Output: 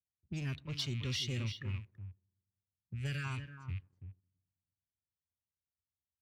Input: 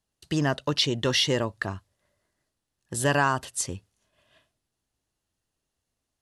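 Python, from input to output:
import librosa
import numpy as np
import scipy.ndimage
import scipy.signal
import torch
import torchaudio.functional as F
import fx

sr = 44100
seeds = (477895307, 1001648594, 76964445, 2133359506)

y = fx.rattle_buzz(x, sr, strikes_db=-42.0, level_db=-18.0)
y = fx.tone_stack(y, sr, knobs='6-0-2')
y = fx.env_lowpass(y, sr, base_hz=510.0, full_db=-38.0)
y = fx.low_shelf(y, sr, hz=250.0, db=11.5)
y = fx.echo_wet_lowpass(y, sr, ms=107, feedback_pct=63, hz=1700.0, wet_db=-23)
y = fx.spec_erase(y, sr, start_s=2.87, length_s=0.38, low_hz=590.0, high_hz=1200.0)
y = y + 10.0 ** (-9.0 / 20.0) * np.pad(y, (int(332 * sr / 1000.0), 0))[:len(y)]
y = fx.env_lowpass(y, sr, base_hz=400.0, full_db=-31.5)
y = scipy.signal.sosfilt(scipy.signal.butter(4, 68.0, 'highpass', fs=sr, output='sos'), y)
y = fx.leveller(y, sr, passes=1)
y = fx.noise_reduce_blind(y, sr, reduce_db=8)
y = y * librosa.db_to_amplitude(-1.0)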